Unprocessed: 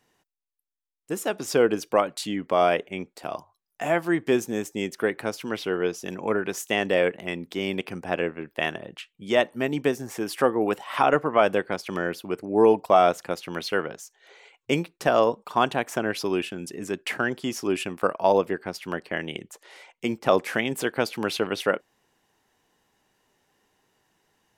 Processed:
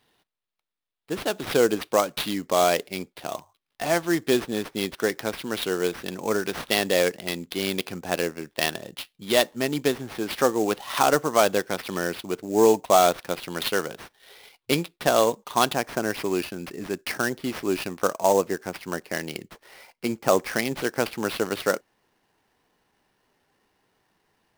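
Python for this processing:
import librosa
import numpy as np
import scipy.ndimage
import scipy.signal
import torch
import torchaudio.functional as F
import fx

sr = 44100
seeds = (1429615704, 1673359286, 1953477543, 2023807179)

y = fx.peak_eq(x, sr, hz=3600.0, db=fx.steps((0.0, 10.0), (15.76, -3.0)), octaves=0.46)
y = fx.sample_hold(y, sr, seeds[0], rate_hz=7300.0, jitter_pct=20)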